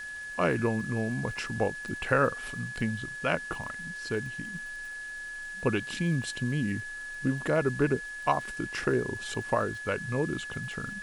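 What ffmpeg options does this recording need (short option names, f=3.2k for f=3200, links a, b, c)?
-af "adeclick=t=4,bandreject=f=1.7k:w=30,afwtdn=0.0028"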